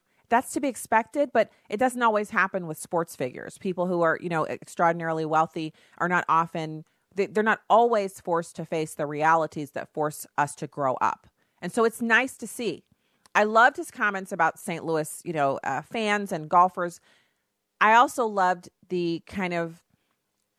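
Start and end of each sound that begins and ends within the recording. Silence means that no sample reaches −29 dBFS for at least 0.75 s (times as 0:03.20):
0:17.81–0:19.67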